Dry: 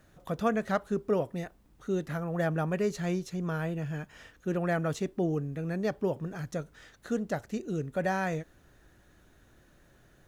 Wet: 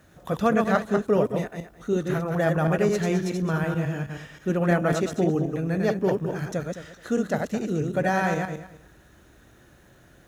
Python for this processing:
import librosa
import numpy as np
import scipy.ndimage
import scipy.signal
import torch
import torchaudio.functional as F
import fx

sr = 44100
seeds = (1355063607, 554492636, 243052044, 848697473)

y = fx.reverse_delay_fb(x, sr, ms=107, feedback_pct=40, wet_db=-3.5)
y = scipy.signal.sosfilt(scipy.signal.butter(2, 43.0, 'highpass', fs=sr, output='sos'), y)
y = fx.notch(y, sr, hz=4600.0, q=21.0)
y = y * librosa.db_to_amplitude(5.5)